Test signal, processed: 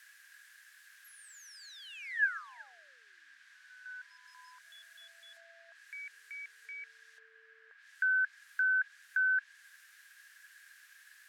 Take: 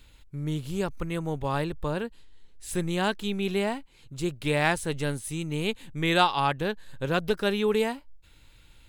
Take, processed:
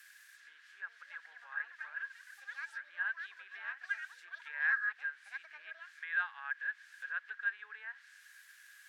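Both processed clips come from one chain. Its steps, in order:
delay with pitch and tempo change per echo 574 ms, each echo +7 semitones, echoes 3, each echo −6 dB
high-shelf EQ 2,100 Hz −10 dB
in parallel at −9 dB: bit-depth reduction 6 bits, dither triangular
on the sum: treble cut that deepens with the level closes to 2,100 Hz, closed at −21 dBFS
four-pole ladder high-pass 1,600 Hz, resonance 90%
level −4 dB

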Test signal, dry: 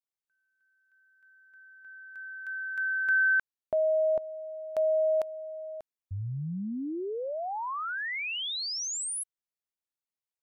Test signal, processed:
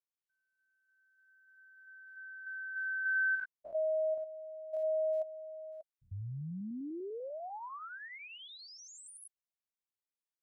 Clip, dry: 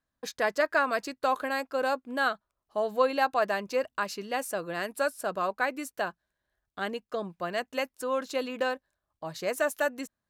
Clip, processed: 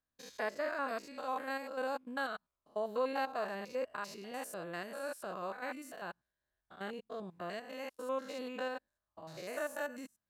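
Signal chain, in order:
spectrum averaged block by block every 100 ms
level −6.5 dB

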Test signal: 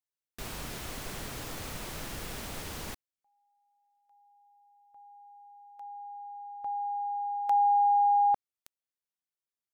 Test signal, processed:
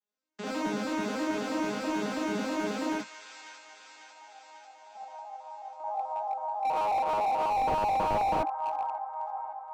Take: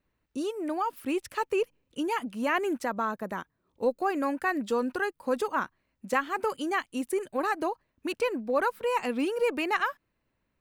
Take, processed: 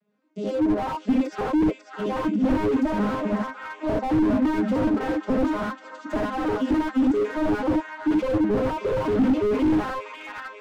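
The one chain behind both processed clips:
vocoder with an arpeggio as carrier major triad, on G#3, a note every 108 ms
delay with a high-pass on its return 546 ms, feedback 61%, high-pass 1,500 Hz, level −8.5 dB
reverb whose tail is shaped and stops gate 100 ms rising, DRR −3.5 dB
slew-rate limiting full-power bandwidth 17 Hz
level +7.5 dB

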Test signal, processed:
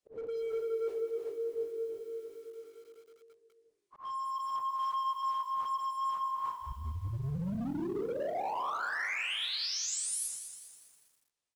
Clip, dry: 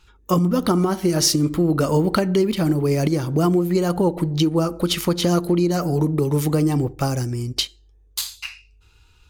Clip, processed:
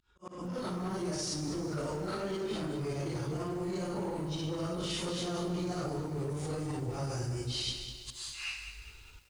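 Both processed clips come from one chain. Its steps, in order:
random phases in long frames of 200 ms
in parallel at −8 dB: wave folding −21.5 dBFS
on the sum: brickwall limiter −16.5 dBFS
hum removal 163.4 Hz, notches 24
echo with shifted repeats 168 ms, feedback 39%, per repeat −50 Hz, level −18 dB
downsampling to 22,050 Hz
volume swells 578 ms
dynamic equaliser 240 Hz, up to −7 dB, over −41 dBFS, Q 2.2
reversed playback
downward compressor 8 to 1, threshold −31 dBFS
reversed playback
feedback echo at a low word length 201 ms, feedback 55%, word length 9 bits, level −10 dB
level −2.5 dB

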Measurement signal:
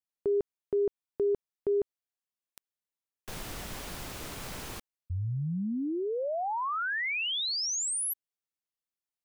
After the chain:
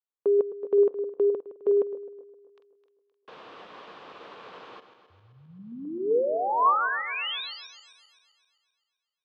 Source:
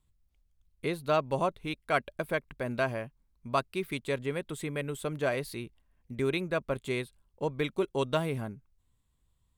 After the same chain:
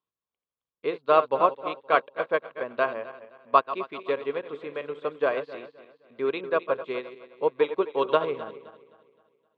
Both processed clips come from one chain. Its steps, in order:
feedback delay that plays each chunk backwards 130 ms, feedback 66%, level −9 dB
loudspeaker in its box 350–3,500 Hz, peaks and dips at 470 Hz +7 dB, 1,100 Hz +8 dB, 2,100 Hz −5 dB
expander for the loud parts 1.5 to 1, over −46 dBFS
level +6 dB

